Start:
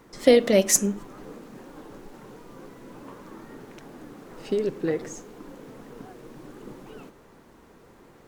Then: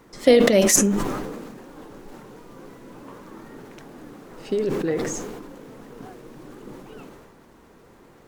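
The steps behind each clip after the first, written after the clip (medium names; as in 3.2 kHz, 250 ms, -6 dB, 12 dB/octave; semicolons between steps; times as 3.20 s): decay stretcher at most 33 dB/s; trim +1 dB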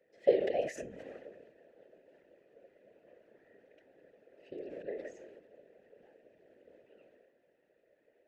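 vowel filter e; whisper effect; trim -8.5 dB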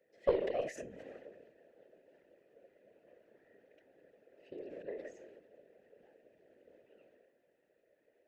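single-diode clipper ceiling -19 dBFS; trim -2.5 dB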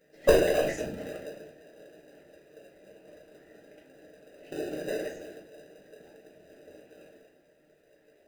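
in parallel at -4.5 dB: sample-rate reducer 1.1 kHz, jitter 0%; on the sum: reverberation RT60 0.30 s, pre-delay 5 ms, DRR -0.5 dB; trim +6 dB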